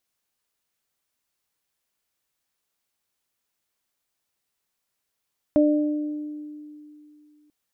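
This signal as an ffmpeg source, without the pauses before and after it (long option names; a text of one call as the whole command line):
ffmpeg -f lavfi -i "aevalsrc='0.178*pow(10,-3*t/2.76)*sin(2*PI*299*t)+0.141*pow(10,-3*t/1.15)*sin(2*PI*598*t)':duration=1.94:sample_rate=44100" out.wav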